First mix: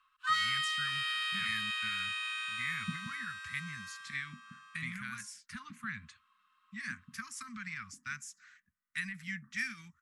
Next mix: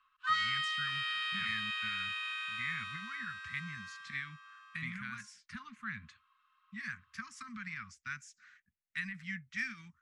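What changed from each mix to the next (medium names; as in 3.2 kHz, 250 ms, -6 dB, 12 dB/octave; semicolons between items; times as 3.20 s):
second sound: muted; master: add distance through air 96 m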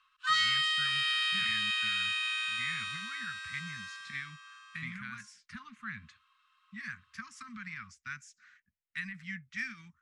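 background: add tilt EQ +4.5 dB/octave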